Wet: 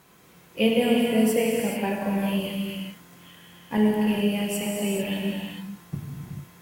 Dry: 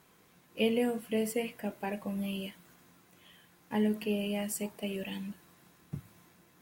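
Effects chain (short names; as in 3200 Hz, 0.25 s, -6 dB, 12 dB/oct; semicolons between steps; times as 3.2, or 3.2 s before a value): 3.77–4.61 expander -31 dBFS; non-linear reverb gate 0.47 s flat, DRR -2 dB; gain +6 dB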